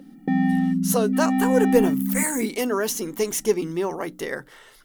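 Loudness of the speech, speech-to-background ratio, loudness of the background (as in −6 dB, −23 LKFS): −24.5 LKFS, −2.0 dB, −22.5 LKFS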